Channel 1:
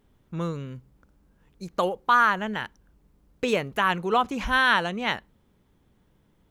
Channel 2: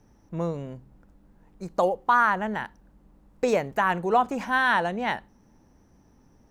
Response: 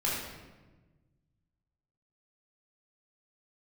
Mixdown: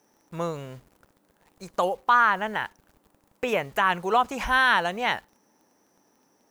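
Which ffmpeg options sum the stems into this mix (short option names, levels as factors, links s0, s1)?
-filter_complex "[0:a]acrusher=bits=8:mix=0:aa=0.000001,volume=0.708[s0];[1:a]highpass=370,highshelf=f=6600:g=10,alimiter=limit=0.119:level=0:latency=1:release=226,volume=1[s1];[s0][s1]amix=inputs=2:normalize=0"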